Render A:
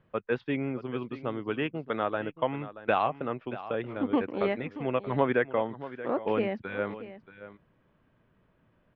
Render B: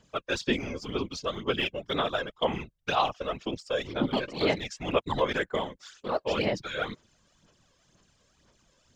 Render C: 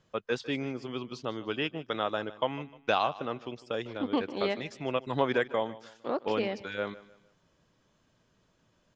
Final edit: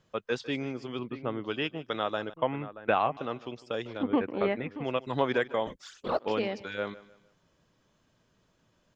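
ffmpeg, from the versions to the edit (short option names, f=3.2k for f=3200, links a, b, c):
-filter_complex "[0:a]asplit=3[a][b][c];[2:a]asplit=5[d][e][f][g][h];[d]atrim=end=0.992[i];[a]atrim=start=0.988:end=1.442[j];[e]atrim=start=1.438:end=2.342[k];[b]atrim=start=2.338:end=3.172[l];[f]atrim=start=3.168:end=4.032[m];[c]atrim=start=4.028:end=4.842[n];[g]atrim=start=4.838:end=5.672[o];[1:a]atrim=start=5.668:end=6.192[p];[h]atrim=start=6.188[q];[i][j]acrossfade=d=0.004:c1=hsin:c2=hsin[r];[r][k]acrossfade=d=0.004:c1=hsin:c2=hsin[s];[s][l]acrossfade=d=0.004:c1=hsin:c2=hsin[t];[t][m]acrossfade=d=0.004:c1=hsin:c2=hsin[u];[u][n]acrossfade=d=0.004:c1=hsin:c2=hsin[v];[v][o]acrossfade=d=0.004:c1=hsin:c2=hsin[w];[w][p]acrossfade=d=0.004:c1=hsin:c2=hsin[x];[x][q]acrossfade=d=0.004:c1=hsin:c2=hsin"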